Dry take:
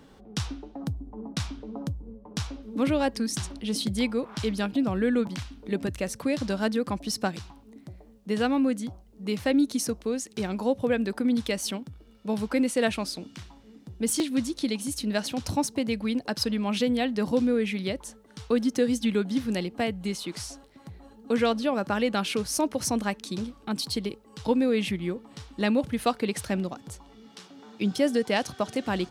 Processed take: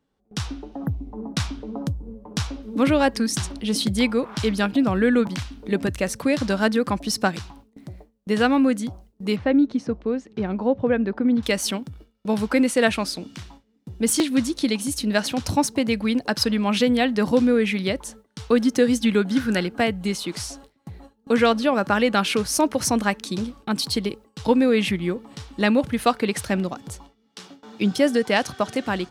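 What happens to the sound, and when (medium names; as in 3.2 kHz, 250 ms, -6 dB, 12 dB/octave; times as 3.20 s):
0.74–1.24 s: spectral replace 2–11 kHz
9.36–11.43 s: tape spacing loss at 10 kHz 35 dB
19.31–19.80 s: peaking EQ 1.5 kHz +15 dB 0.23 oct
whole clip: gate with hold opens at -39 dBFS; dynamic bell 1.5 kHz, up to +4 dB, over -40 dBFS, Q 0.99; level rider gain up to 5.5 dB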